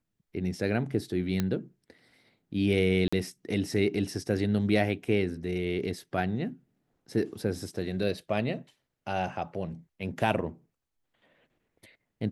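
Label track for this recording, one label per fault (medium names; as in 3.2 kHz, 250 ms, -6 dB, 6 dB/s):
1.400000	1.400000	pop -14 dBFS
3.080000	3.120000	dropout 45 ms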